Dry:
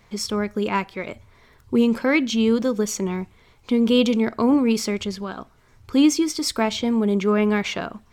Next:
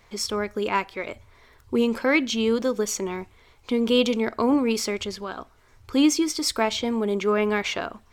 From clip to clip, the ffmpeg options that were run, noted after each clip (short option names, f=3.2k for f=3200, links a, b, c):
-af "equalizer=f=170:t=o:w=0.95:g=-10.5"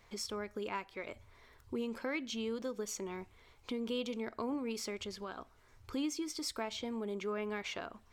-af "acompressor=threshold=-35dB:ratio=2,volume=-7dB"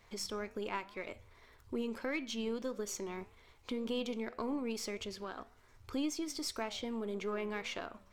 -af "aeval=exprs='if(lt(val(0),0),0.708*val(0),val(0))':c=same,flanger=delay=9.7:depth=3.6:regen=-88:speed=1.8:shape=triangular,volume=6dB"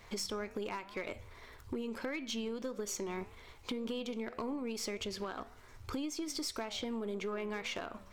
-af "acompressor=threshold=-42dB:ratio=10,asoftclip=type=hard:threshold=-37.5dB,volume=7.5dB"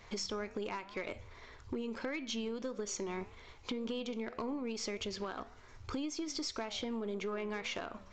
-af "aresample=16000,aresample=44100"